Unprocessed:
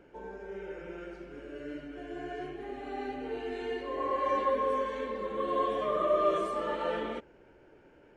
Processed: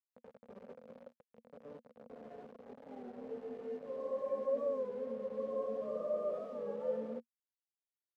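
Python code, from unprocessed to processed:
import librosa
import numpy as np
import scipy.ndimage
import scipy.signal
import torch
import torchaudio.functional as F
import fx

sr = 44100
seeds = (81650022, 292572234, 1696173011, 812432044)

y = fx.quant_dither(x, sr, seeds[0], bits=6, dither='none')
y = fx.double_bandpass(y, sr, hz=340.0, octaves=1.1)
y = fx.record_warp(y, sr, rpm=33.33, depth_cents=100.0)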